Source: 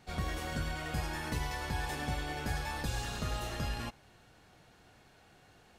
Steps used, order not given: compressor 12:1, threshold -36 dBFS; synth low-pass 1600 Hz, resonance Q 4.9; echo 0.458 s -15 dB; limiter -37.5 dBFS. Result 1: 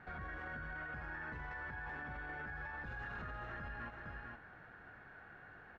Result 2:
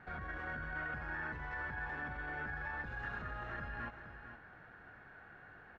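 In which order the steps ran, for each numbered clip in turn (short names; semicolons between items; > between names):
echo > compressor > synth low-pass > limiter; compressor > echo > limiter > synth low-pass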